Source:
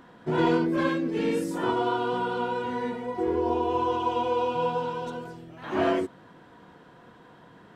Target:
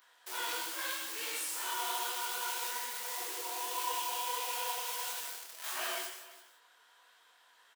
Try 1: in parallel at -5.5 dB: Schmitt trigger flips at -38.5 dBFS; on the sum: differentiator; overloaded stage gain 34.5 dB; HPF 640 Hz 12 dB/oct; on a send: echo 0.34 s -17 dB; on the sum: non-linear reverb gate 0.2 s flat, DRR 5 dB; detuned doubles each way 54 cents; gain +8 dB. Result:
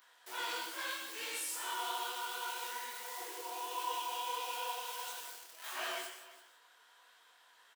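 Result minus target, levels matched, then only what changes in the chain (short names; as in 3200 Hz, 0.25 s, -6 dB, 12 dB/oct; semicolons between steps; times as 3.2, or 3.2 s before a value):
overloaded stage: distortion +13 dB
change: overloaded stage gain 28 dB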